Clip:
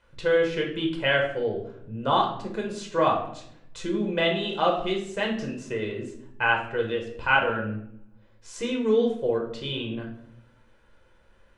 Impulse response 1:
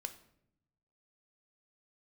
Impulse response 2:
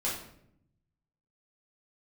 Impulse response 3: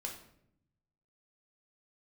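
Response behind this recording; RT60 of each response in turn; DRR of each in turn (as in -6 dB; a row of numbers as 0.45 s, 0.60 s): 3; 0.75 s, 0.70 s, 0.70 s; 8.0 dB, -7.0 dB, 0.0 dB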